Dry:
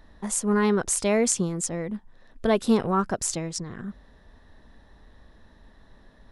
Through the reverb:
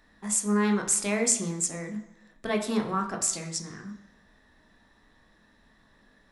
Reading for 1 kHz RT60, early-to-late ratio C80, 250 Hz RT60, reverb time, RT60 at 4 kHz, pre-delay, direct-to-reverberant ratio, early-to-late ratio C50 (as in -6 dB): 1.0 s, 12.5 dB, 0.85 s, 1.0 s, 0.90 s, 18 ms, 4.0 dB, 10.0 dB